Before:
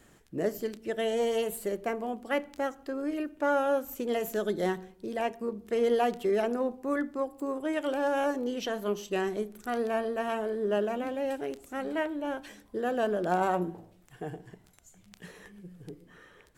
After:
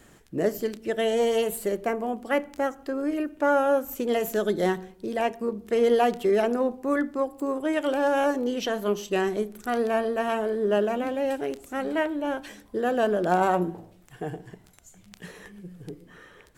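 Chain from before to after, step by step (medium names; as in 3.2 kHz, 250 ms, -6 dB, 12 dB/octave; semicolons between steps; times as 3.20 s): 1.82–3.91 s: dynamic bell 3.8 kHz, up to -5 dB, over -53 dBFS, Q 1.3; trim +5 dB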